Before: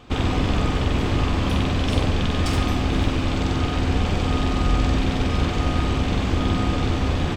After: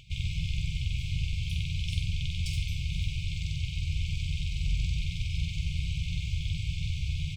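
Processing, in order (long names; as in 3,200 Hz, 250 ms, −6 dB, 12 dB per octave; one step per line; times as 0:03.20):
brick-wall band-stop 180–2,100 Hz
upward compression, threshold −40 dBFS
level −8 dB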